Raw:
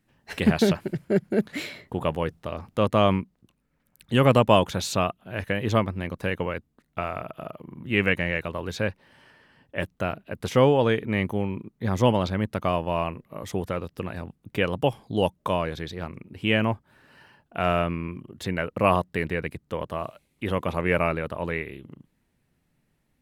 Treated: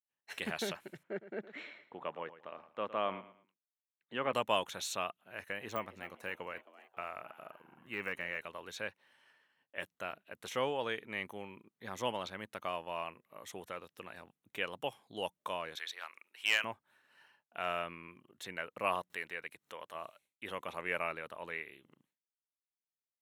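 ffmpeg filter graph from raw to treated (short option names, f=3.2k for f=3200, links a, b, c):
-filter_complex "[0:a]asettb=1/sr,asplit=3[a][b][c];[a]atrim=end=1.034[d];[b]atrim=start=1.03:end=4.33,asetpts=PTS-STARTPTS,afade=t=in:d=0.004:c=qsin,afade=t=out:st=3.296:d=0.004:c=qsin,highpass=160,lowpass=2.2k,aecho=1:1:111|222|333:0.188|0.0546|0.0158,atrim=end_sample=145530[e];[c]atrim=start=4.326[f];[d][e]acrossfade=d=0.004:c1=hsin:c2=qsin[g];[g][f]acrossfade=d=0.004:c1=qsin:c2=hsin,asettb=1/sr,asplit=3[h][i][j];[h]atrim=end=5.214[k];[i]atrim=start=5.21:end=8.47,asetpts=PTS-STARTPTS,afade=t=in:d=0.004:c=qsin,afade=t=out:st=3.256:d=0.004:c=qsin,deesser=0.85,equalizer=f=3.4k:w=5:g=-8,asplit=5[l][m][n][o][p];[m]adelay=267,afreqshift=140,volume=-18dB[q];[n]adelay=534,afreqshift=280,volume=-24.9dB[r];[o]adelay=801,afreqshift=420,volume=-31.9dB[s];[p]adelay=1068,afreqshift=560,volume=-38.8dB[t];[l][q][r][s][t]amix=inputs=5:normalize=0,atrim=end_sample=143766[u];[j]atrim=start=8.466[v];[k][u]acrossfade=d=0.004:c1=hsin:c2=qsin[w];[w][v]acrossfade=d=0.004:c1=qsin:c2=hsin,asettb=1/sr,asplit=3[x][y][z];[x]atrim=end=15.754[aa];[y]atrim=start=15.75:end=16.64,asetpts=PTS-STARTPTS,afade=t=in:d=0.004:c=qsin,afade=t=out:st=0.886:d=0.004:c=qsin,highpass=1.1k,acontrast=75,aeval=exprs='clip(val(0),-1,0.168)':c=same[ab];[z]atrim=start=16.636[ac];[aa][ab]acrossfade=d=0.004:c1=hsin:c2=qsin[ad];[ad][ac]acrossfade=d=0.004:c1=qsin:c2=hsin,asettb=1/sr,asplit=3[ae][af][ag];[ae]atrim=end=19.104[ah];[af]atrim=start=19.1:end=19.95,asetpts=PTS-STARTPTS,afade=t=in:d=0.004:c=qsin,afade=t=out:st=0.846:d=0.004:c=qsin,lowshelf=f=370:g=-8.5,acompressor=mode=upward:threshold=-34dB:ratio=2.5:attack=3.2:release=140:knee=2.83:detection=peak[ai];[ag]atrim=start=19.946[aj];[ah][ai]acrossfade=d=0.004:c1=hsin:c2=qsin[ak];[ak][aj]acrossfade=d=0.004:c1=qsin:c2=hsin,agate=range=-33dB:threshold=-52dB:ratio=3:detection=peak,highpass=f=1.2k:p=1,bandreject=f=4.8k:w=7.2,volume=-7.5dB"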